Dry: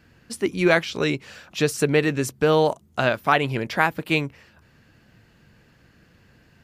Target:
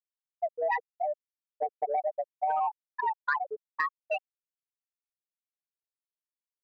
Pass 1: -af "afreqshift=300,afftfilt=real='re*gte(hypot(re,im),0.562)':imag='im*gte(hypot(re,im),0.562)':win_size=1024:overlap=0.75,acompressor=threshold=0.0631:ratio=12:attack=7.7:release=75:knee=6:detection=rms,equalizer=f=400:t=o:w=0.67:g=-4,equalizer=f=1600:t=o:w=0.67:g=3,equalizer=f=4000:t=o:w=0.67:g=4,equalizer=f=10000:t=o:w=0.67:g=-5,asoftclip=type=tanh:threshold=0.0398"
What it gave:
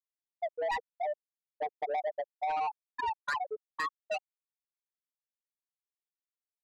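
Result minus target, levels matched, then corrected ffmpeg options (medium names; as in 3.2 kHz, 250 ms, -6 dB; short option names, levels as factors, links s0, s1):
saturation: distortion +14 dB
-af "afreqshift=300,afftfilt=real='re*gte(hypot(re,im),0.562)':imag='im*gte(hypot(re,im),0.562)':win_size=1024:overlap=0.75,acompressor=threshold=0.0631:ratio=12:attack=7.7:release=75:knee=6:detection=rms,equalizer=f=400:t=o:w=0.67:g=-4,equalizer=f=1600:t=o:w=0.67:g=3,equalizer=f=4000:t=o:w=0.67:g=4,equalizer=f=10000:t=o:w=0.67:g=-5,asoftclip=type=tanh:threshold=0.141"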